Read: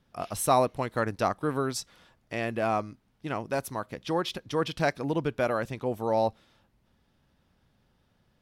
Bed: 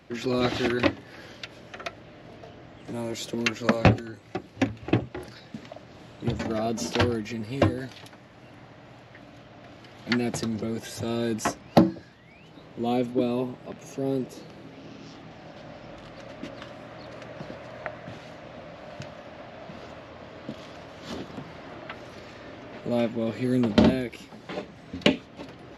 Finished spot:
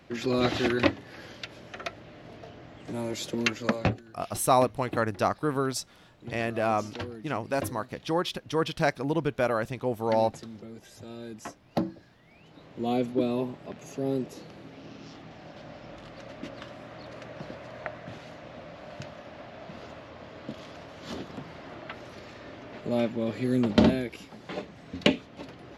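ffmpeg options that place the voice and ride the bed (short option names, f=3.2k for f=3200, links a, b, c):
-filter_complex "[0:a]adelay=4000,volume=1dB[a];[1:a]volume=11.5dB,afade=t=out:st=3.45:d=0.56:silence=0.223872,afade=t=in:st=11.62:d=1.37:silence=0.251189[b];[a][b]amix=inputs=2:normalize=0"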